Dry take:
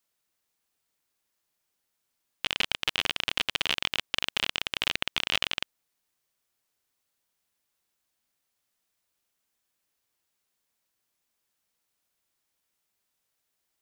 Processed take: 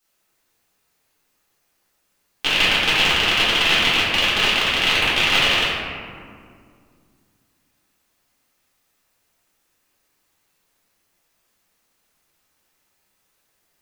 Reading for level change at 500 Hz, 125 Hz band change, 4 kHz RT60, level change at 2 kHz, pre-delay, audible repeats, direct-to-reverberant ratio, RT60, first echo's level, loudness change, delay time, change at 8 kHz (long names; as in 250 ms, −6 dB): +15.0 dB, +15.0 dB, 1.0 s, +13.5 dB, 3 ms, no echo audible, −11.5 dB, 2.1 s, no echo audible, +12.0 dB, no echo audible, +10.5 dB